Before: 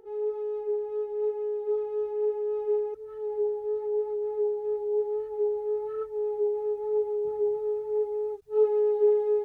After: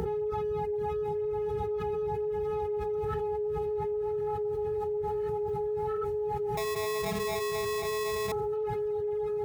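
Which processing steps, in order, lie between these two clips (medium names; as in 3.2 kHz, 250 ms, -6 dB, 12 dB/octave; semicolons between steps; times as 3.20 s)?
band noise 50–170 Hz -48 dBFS; bass shelf 250 Hz -6.5 dB; reverb removal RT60 1.3 s; peaking EQ 330 Hz -5.5 dB 2.5 oct; echo that smears into a reverb 1161 ms, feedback 51%, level -3.5 dB; 6.57–8.32 s: sample-rate reducer 1.5 kHz, jitter 0%; level flattener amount 100%; trim -5.5 dB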